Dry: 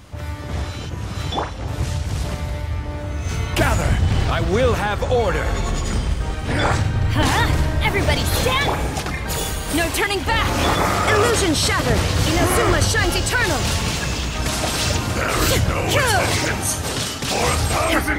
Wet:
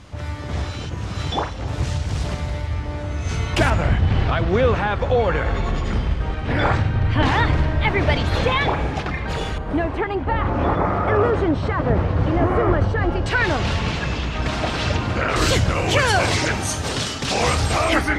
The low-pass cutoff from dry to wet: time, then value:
7.2 kHz
from 3.70 s 3.1 kHz
from 9.58 s 1.2 kHz
from 13.26 s 3.2 kHz
from 15.36 s 6.9 kHz

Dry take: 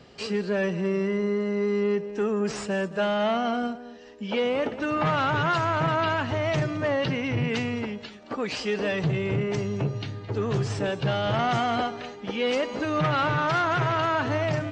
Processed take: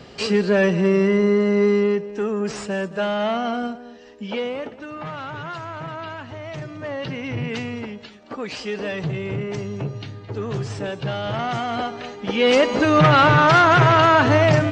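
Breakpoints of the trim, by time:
1.67 s +8.5 dB
2.07 s +2 dB
4.24 s +2 dB
4.88 s -8 dB
6.50 s -8 dB
7.31 s -0.5 dB
11.67 s -0.5 dB
12.60 s +10.5 dB

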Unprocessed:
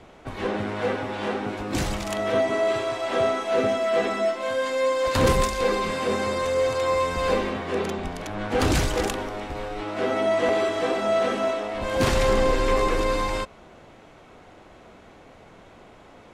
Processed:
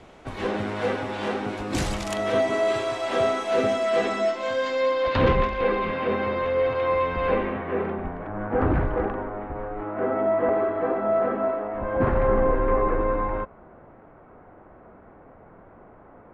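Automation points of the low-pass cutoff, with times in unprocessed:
low-pass 24 dB/octave
3.70 s 12 kHz
4.66 s 5.9 kHz
5.37 s 2.9 kHz
7.12 s 2.9 kHz
8.32 s 1.6 kHz

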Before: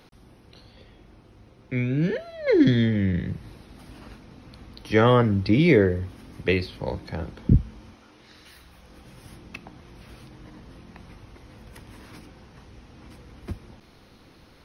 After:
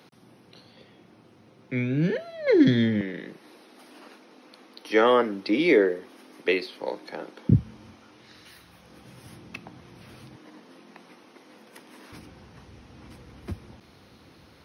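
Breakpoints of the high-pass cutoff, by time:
high-pass 24 dB/octave
130 Hz
from 3.01 s 280 Hz
from 7.49 s 88 Hz
from 10.36 s 230 Hz
from 12.12 s 63 Hz

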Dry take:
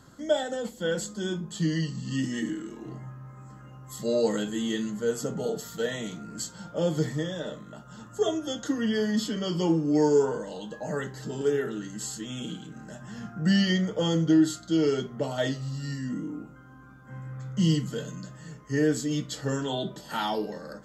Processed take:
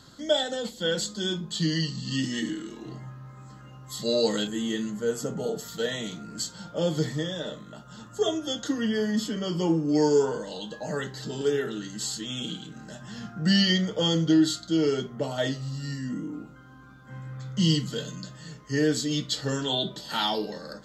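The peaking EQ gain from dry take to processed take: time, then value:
peaking EQ 4 kHz 0.95 oct
+12.5 dB
from 4.47 s +0.5 dB
from 5.68 s +7 dB
from 8.87 s -1 dB
from 9.89 s +10.5 dB
from 14.67 s +3 dB
from 16.33 s +11.5 dB

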